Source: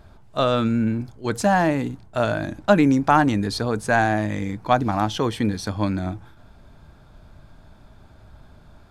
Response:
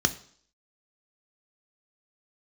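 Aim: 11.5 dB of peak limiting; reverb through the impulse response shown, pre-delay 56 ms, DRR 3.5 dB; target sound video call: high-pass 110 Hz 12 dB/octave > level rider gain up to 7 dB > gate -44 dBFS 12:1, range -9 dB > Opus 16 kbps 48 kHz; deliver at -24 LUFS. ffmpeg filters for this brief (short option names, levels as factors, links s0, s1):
-filter_complex "[0:a]alimiter=limit=0.178:level=0:latency=1,asplit=2[s0][s1];[1:a]atrim=start_sample=2205,adelay=56[s2];[s1][s2]afir=irnorm=-1:irlink=0,volume=0.2[s3];[s0][s3]amix=inputs=2:normalize=0,highpass=110,dynaudnorm=m=2.24,agate=range=0.355:threshold=0.00631:ratio=12,volume=0.944" -ar 48000 -c:a libopus -b:a 16k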